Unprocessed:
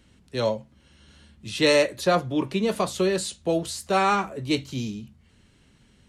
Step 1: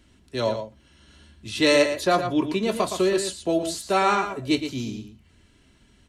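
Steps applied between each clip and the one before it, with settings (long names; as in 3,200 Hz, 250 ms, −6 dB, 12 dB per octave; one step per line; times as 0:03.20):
comb filter 3 ms, depth 38%
slap from a distant wall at 20 metres, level −8 dB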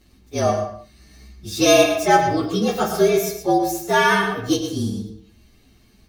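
partials spread apart or drawn together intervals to 114%
on a send at −7 dB: convolution reverb, pre-delay 5 ms
on the sum: level +6 dB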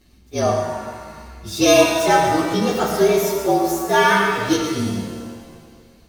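reverb with rising layers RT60 1.8 s, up +7 semitones, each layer −8 dB, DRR 5 dB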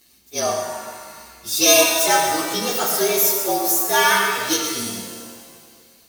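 RIAA equalisation recording
level −2 dB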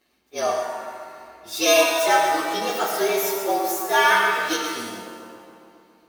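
bass and treble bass −12 dB, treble −11 dB
feedback echo with a low-pass in the loop 138 ms, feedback 77%, low-pass 2,500 Hz, level −14 dB
one half of a high-frequency compander decoder only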